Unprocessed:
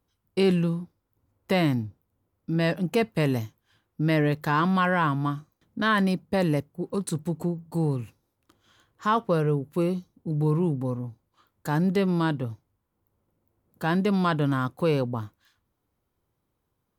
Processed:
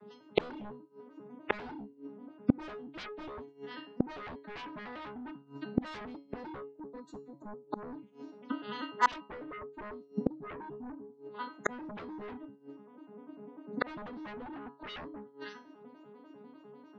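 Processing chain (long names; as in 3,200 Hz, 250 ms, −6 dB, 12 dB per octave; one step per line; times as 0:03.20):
vocoder with an arpeggio as carrier minor triad, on G#3, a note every 99 ms
spectral peaks only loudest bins 64
tuned comb filter 140 Hz, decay 0.36 s, harmonics all, mix 90%
sine wavefolder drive 18 dB, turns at −20.5 dBFS
gate with flip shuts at −30 dBFS, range −38 dB
level +18 dB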